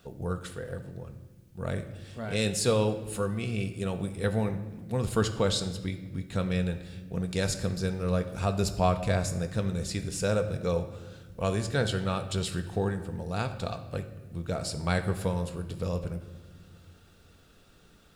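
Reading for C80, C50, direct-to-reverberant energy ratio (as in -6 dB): 13.0 dB, 11.0 dB, 6.5 dB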